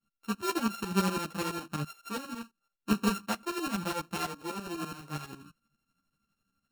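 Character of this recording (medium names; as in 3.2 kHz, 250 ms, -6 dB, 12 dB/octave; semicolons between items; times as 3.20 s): a buzz of ramps at a fixed pitch in blocks of 32 samples; tremolo saw up 12 Hz, depth 85%; a shimmering, thickened sound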